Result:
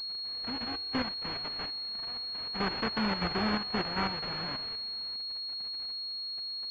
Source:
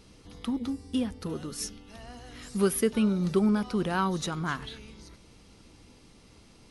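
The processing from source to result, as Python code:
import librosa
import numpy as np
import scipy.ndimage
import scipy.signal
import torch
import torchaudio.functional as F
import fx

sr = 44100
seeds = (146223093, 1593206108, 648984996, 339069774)

y = fx.envelope_flatten(x, sr, power=0.1)
y = fx.level_steps(y, sr, step_db=9)
y = fx.pwm(y, sr, carrier_hz=4300.0)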